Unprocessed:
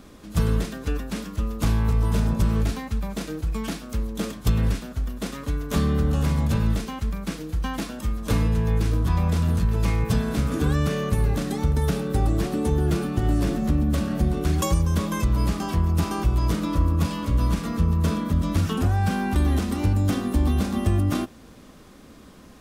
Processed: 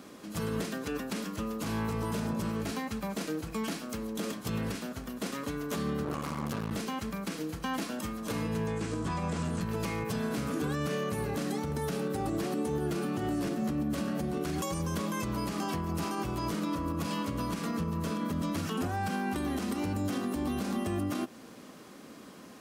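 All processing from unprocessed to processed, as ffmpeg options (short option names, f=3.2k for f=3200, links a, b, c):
-filter_complex "[0:a]asettb=1/sr,asplit=3[a][b][c];[a]atrim=end=6.044[d];[b]atrim=start=6.04:end=6.71,asetpts=PTS-STARTPTS,afade=t=in:d=0.004:c=qsin,afade=t=out:st=0.666:d=0.004:c=qsin,equalizer=f=1.1k:t=o:w=0.22:g=11,aeval=exprs='max(val(0),0)':c=same[e];[c]atrim=start=6.706[f];[d][e]acrossfade=d=0.004:c1=hsin:c2=qsin[g];[g][f]acrossfade=d=0.004:c1=qsin:c2=hsin,asettb=1/sr,asplit=3[h][i][j];[h]atrim=end=8.674[k];[i]atrim=start=8.67:end=9.61,asetpts=PTS-STARTPTS,afade=t=in:d=0.004:c=qsin,afade=t=out:st=0.936:d=0.004:c=qsin,acrossover=split=3300[l][m];[m]acompressor=threshold=-48dB:ratio=4:attack=1:release=60[n];[l][n]amix=inputs=2:normalize=0,lowpass=f=7.9k:t=q:w=3.2[o];[j]atrim=start=9.606[p];[k][o]acrossfade=d=0.004:c1=hsin:c2=qsin[q];[q][p]acrossfade=d=0.004:c1=qsin:c2=hsin,highpass=190,bandreject=f=3.6k:w=20,alimiter=limit=-24dB:level=0:latency=1:release=111"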